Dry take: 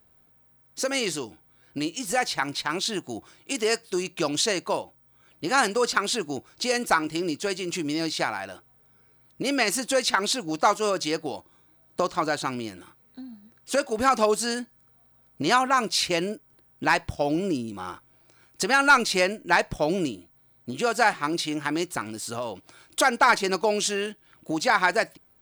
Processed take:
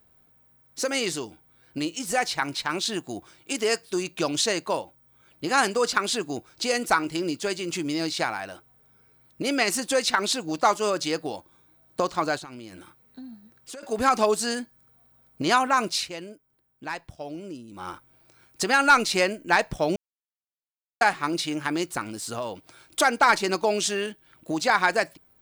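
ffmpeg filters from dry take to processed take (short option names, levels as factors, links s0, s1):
-filter_complex "[0:a]asettb=1/sr,asplit=3[s0][s1][s2];[s0]atrim=end=12.374[s3];[s1]atrim=start=12.37:end=13.83,asetpts=PTS-STARTPTS,afade=t=in:d=0.004:c=qsin,afade=t=out:st=1.456:d=0.004:c=qsin,acompressor=threshold=0.0158:ratio=16:attack=3.2:release=140:knee=1:detection=peak[s4];[s2]atrim=start=13.826[s5];[s3][s4]acrossfade=d=0.004:c1=hsin:c2=qsin[s6];[s6][s5]acrossfade=d=0.004:c1=qsin:c2=hsin,asplit=5[s7][s8][s9][s10][s11];[s7]atrim=end=16.1,asetpts=PTS-STARTPTS,afade=t=out:st=15.9:d=0.2:silence=0.266073[s12];[s8]atrim=start=16.1:end=17.68,asetpts=PTS-STARTPTS,volume=0.266[s13];[s9]atrim=start=17.68:end=19.96,asetpts=PTS-STARTPTS,afade=t=in:d=0.2:silence=0.266073,afade=t=out:st=2.276:d=0.004:c=hsin[s14];[s10]atrim=start=19.96:end=21.01,asetpts=PTS-STARTPTS,volume=0[s15];[s11]atrim=start=21.01,asetpts=PTS-STARTPTS,afade=t=in:d=0.004:c=hsin[s16];[s12][s13][s14][s15][s16]concat=n=5:v=0:a=1"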